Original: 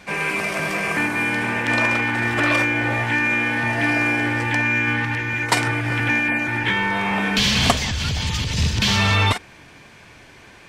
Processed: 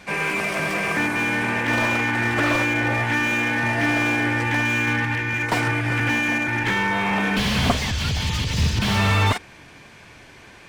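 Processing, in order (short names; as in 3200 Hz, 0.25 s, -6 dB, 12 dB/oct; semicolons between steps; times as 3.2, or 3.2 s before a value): slew limiter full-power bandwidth 190 Hz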